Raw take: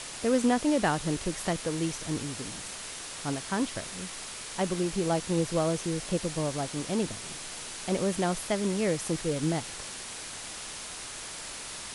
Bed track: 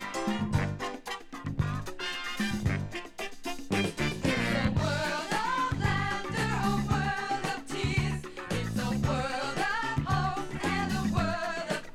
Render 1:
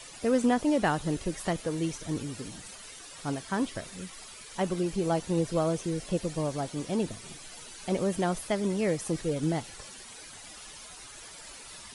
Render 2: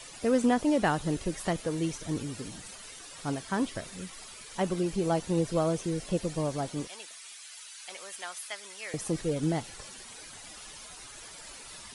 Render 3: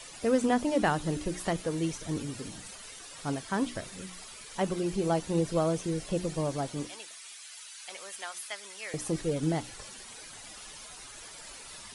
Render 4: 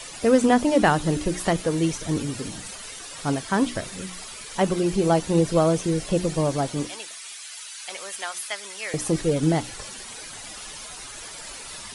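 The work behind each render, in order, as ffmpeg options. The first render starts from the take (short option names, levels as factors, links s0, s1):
-af "afftdn=nr=12:nf=-41"
-filter_complex "[0:a]asettb=1/sr,asplit=3[s0][s1][s2];[s0]atrim=end=6.874[s3];[s1]atrim=start=6.87:end=8.94,asetpts=PTS-STARTPTS,afade=t=in:d=0.004:c=qsin,afade=t=out:st=2.066:d=0.004:c=qsin,highpass=1500[s4];[s2]atrim=start=8.936[s5];[s3][s4]acrossfade=d=0.004:c1=hsin:c2=qsin[s6];[s6][s5]acrossfade=d=0.004:c1=qsin:c2=hsin"
-af "bandreject=f=60:t=h:w=6,bandreject=f=120:t=h:w=6,bandreject=f=180:t=h:w=6,bandreject=f=240:t=h:w=6,bandreject=f=300:t=h:w=6,bandreject=f=360:t=h:w=6"
-af "volume=2.51"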